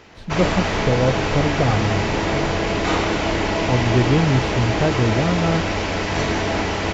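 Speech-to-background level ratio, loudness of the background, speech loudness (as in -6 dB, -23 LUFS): 0.0 dB, -21.5 LUFS, -21.5 LUFS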